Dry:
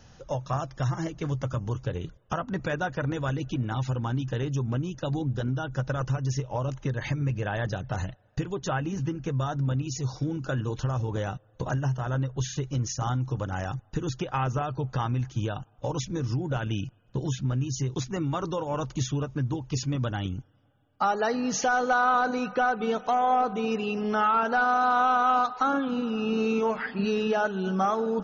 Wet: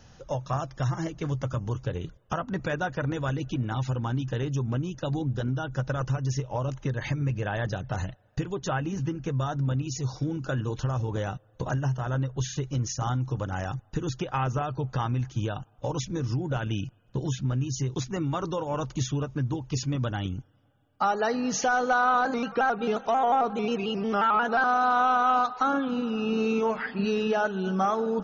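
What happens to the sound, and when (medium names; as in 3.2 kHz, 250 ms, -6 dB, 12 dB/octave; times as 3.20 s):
22.25–24.64 s: vibrato with a chosen wave square 5.6 Hz, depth 100 cents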